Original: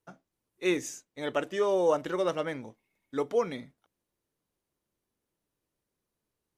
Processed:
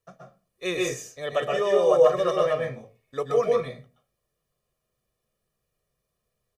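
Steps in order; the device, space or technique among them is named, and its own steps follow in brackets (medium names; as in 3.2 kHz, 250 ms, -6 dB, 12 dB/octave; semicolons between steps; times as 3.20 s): microphone above a desk (comb 1.7 ms, depth 76%; reverberation RT60 0.35 s, pre-delay 119 ms, DRR -0.5 dB)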